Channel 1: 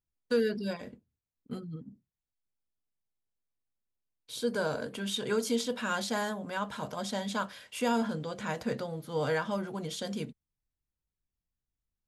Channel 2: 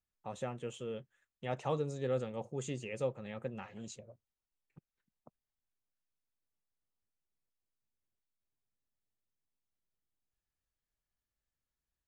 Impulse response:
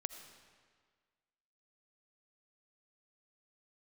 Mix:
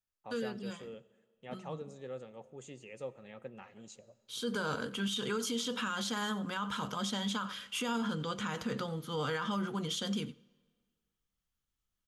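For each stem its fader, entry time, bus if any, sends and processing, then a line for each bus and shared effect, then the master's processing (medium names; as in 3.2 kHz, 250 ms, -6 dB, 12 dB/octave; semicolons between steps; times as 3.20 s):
4.19 s -10.5 dB -> 4.52 s -1 dB, 0.00 s, send -18 dB, echo send -20 dB, graphic EQ with 31 bands 200 Hz +4 dB, 630 Hz -10 dB, 1.25 kHz +10 dB, 3.15 kHz +10 dB, 6.3 kHz +5 dB
-10.0 dB, 0.00 s, send -5.5 dB, no echo send, high-pass 210 Hz 6 dB/octave; gain riding within 5 dB 2 s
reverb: on, RT60 1.7 s, pre-delay 40 ms
echo: delay 90 ms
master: peak limiter -26.5 dBFS, peak gain reduction 11 dB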